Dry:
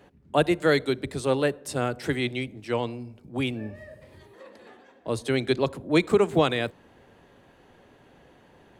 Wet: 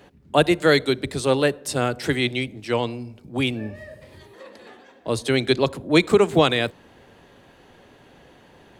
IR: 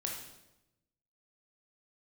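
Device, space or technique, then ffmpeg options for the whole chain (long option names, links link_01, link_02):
presence and air boost: -af "equalizer=frequency=4300:width_type=o:width=1.7:gain=4,highshelf=frequency=11000:gain=3.5,volume=4dB"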